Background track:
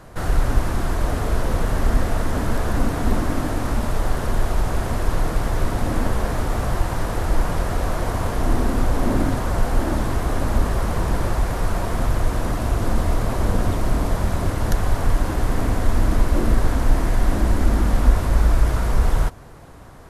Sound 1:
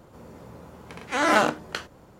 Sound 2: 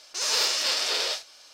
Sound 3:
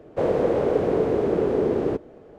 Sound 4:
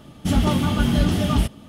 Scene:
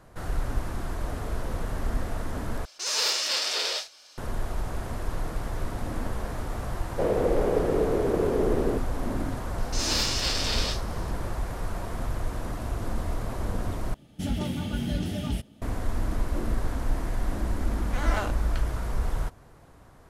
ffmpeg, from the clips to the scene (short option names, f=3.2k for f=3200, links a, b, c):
-filter_complex "[2:a]asplit=2[a][b];[0:a]volume=-10dB[c];[4:a]equalizer=f=1.1k:w=3.6:g=-11[d];[c]asplit=3[e][f][g];[e]atrim=end=2.654[h];[a]atrim=end=1.53,asetpts=PTS-STARTPTS,volume=-1.5dB[i];[f]atrim=start=4.176:end=13.944[j];[d]atrim=end=1.68,asetpts=PTS-STARTPTS,volume=-10dB[k];[g]atrim=start=15.616[l];[3:a]atrim=end=2.38,asetpts=PTS-STARTPTS,volume=-3.5dB,afade=t=in:d=0.004:c=hsin,afade=t=out:st=2.376:d=0.004:c=hsin,adelay=6810[m];[b]atrim=end=1.53,asetpts=PTS-STARTPTS,volume=-3dB,afade=t=in:d=0.004:c=hsin,afade=t=out:st=1.526:d=0.004:c=hsin,adelay=9580[n];[1:a]atrim=end=2.19,asetpts=PTS-STARTPTS,volume=-11.5dB,afade=t=in:d=0.004:c=hsin,afade=t=out:st=2.186:d=0.004:c=hsin,adelay=16810[o];[h][i]acrossfade=d=0.004:c1=hsin:c2=hsin[p];[p][j]acrossfade=d=0.004:c1=hsin:c2=hsin[q];[q][k]acrossfade=d=0.004:c1=hsin:c2=hsin[r];[r][l]acrossfade=d=0.004:c1=hsin:c2=hsin[s];[s][m][n][o]amix=inputs=4:normalize=0"